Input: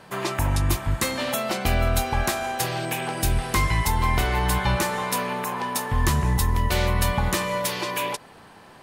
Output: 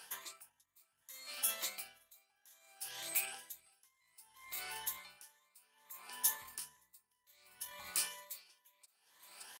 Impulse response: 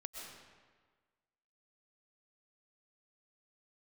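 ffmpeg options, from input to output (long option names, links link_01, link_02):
-filter_complex "[0:a]afftfilt=real='re*pow(10,9/40*sin(2*PI*(1.1*log(max(b,1)*sr/1024/100)/log(2)-(2.3)*(pts-256)/sr)))':imag='im*pow(10,9/40*sin(2*PI*(1.1*log(max(b,1)*sr/1024/100)/log(2)-(2.3)*(pts-256)/sr)))':win_size=1024:overlap=0.75,areverse,acompressor=threshold=-31dB:ratio=6,areverse,atempo=0.92,asoftclip=type=tanh:threshold=-22.5dB,aderivative,asplit=2[link_01][link_02];[link_02]aecho=0:1:571:0.1[link_03];[link_01][link_03]amix=inputs=2:normalize=0,aeval=exprs='val(0)*pow(10,-32*(0.5-0.5*cos(2*PI*0.63*n/s))/20)':channel_layout=same,volume=5dB"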